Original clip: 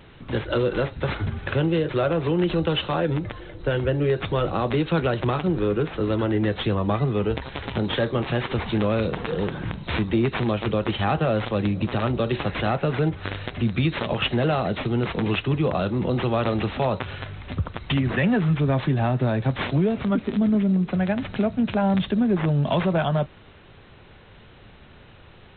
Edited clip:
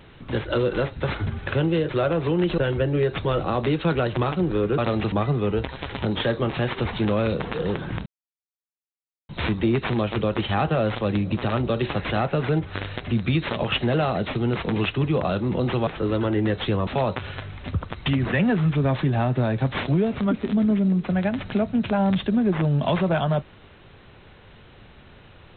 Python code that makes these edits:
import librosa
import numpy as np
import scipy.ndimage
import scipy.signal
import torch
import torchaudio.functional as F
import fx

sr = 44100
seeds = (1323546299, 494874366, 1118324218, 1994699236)

y = fx.edit(x, sr, fx.cut(start_s=2.58, length_s=1.07),
    fx.swap(start_s=5.85, length_s=1.0, other_s=16.37, other_length_s=0.34),
    fx.insert_silence(at_s=9.79, length_s=1.23), tone=tone)